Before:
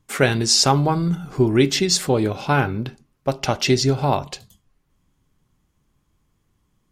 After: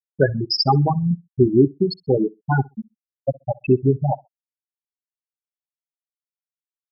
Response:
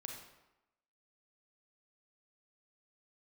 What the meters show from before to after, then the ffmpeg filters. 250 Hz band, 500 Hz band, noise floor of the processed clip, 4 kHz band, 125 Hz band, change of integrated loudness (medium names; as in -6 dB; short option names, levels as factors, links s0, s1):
+0.5 dB, +0.5 dB, under -85 dBFS, -6.0 dB, +0.5 dB, -1.0 dB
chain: -af "afftfilt=real='re*gte(hypot(re,im),0.631)':imag='im*gte(hypot(re,im),0.631)':win_size=1024:overlap=0.75,aecho=1:1:64|128:0.0631|0.0107,volume=1.33"